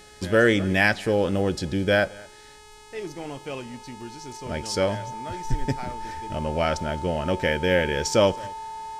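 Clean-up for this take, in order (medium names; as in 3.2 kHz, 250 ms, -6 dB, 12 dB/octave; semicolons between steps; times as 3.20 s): de-hum 423 Hz, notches 23; band-stop 890 Hz, Q 30; inverse comb 218 ms -23.5 dB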